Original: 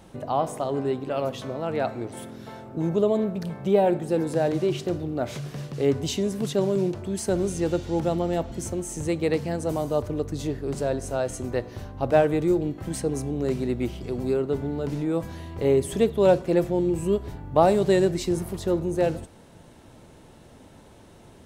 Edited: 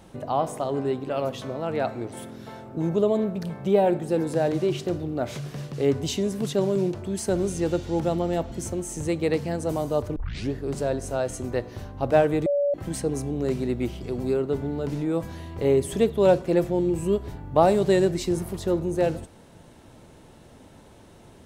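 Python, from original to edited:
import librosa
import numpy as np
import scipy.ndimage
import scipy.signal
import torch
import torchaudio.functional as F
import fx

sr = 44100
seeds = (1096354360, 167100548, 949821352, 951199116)

y = fx.edit(x, sr, fx.tape_start(start_s=10.16, length_s=0.36),
    fx.bleep(start_s=12.46, length_s=0.28, hz=572.0, db=-19.5), tone=tone)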